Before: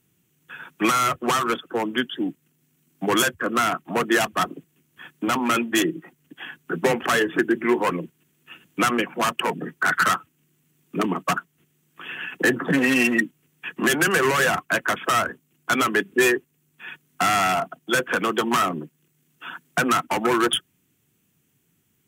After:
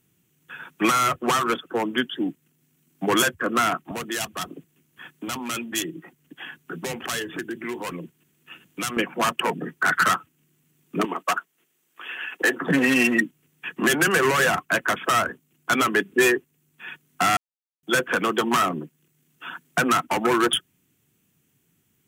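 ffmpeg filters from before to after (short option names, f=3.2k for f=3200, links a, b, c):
-filter_complex "[0:a]asettb=1/sr,asplit=3[a][b][c];[a]atrim=end=3.914[d];[b]atrim=start=3.91:end=8.97,asetpts=PTS-STARTPTS,afade=t=in:d=0.004:c=qsin,afade=t=out:st=5.056:d=0.004:c=qsin,acrossover=split=120|3000[e][f][g];[f]acompressor=threshold=-34dB:ratio=2.5:attack=3.2:release=140:knee=2.83:detection=peak[h];[e][h][g]amix=inputs=3:normalize=0[i];[c]atrim=start=8.966[j];[d][i]acrossfade=d=0.004:c1=hsin:c2=qsin[k];[k][j]acrossfade=d=0.004:c1=qsin:c2=hsin,asettb=1/sr,asplit=3[l][m][n];[l]atrim=end=11.054[o];[m]atrim=start=11.05:end=12.61,asetpts=PTS-STARTPTS,afade=t=in:d=0.004:c=qsin,afade=t=out:st=1.556:d=0.004:c=qsin,highpass=430[p];[n]atrim=start=12.606[q];[o][p]acrossfade=d=0.004:c1=hsin:c2=qsin[r];[r][q]acrossfade=d=0.004:c1=qsin:c2=hsin,asplit=3[s][t][u];[s]atrim=end=17.37,asetpts=PTS-STARTPTS,afade=t=out:st=17.366:d=0.004:c=hsin[v];[t]atrim=start=17.37:end=17.83,asetpts=PTS-STARTPTS,volume=0[w];[u]atrim=start=17.83,asetpts=PTS-STARTPTS,afade=t=in:d=0.004:c=hsin[x];[v][w][x]concat=n=3:v=0:a=1"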